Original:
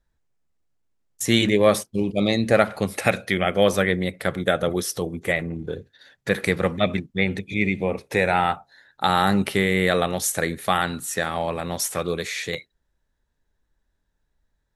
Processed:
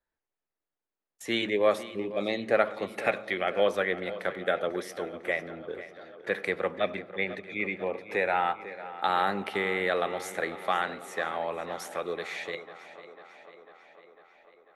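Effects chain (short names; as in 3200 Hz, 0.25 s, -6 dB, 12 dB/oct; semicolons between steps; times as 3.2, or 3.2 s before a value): three-band isolator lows -18 dB, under 290 Hz, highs -14 dB, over 3500 Hz; tape echo 0.498 s, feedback 70%, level -14 dB, low-pass 5600 Hz; on a send at -21 dB: reverb RT60 1.1 s, pre-delay 77 ms; on the sum: gain -5.5 dB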